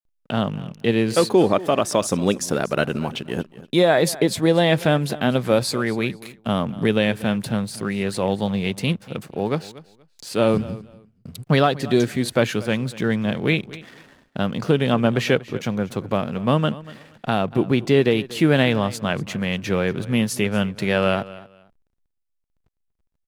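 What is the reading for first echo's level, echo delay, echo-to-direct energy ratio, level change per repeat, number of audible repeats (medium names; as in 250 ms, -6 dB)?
-18.5 dB, 238 ms, -18.5 dB, -13.5 dB, 2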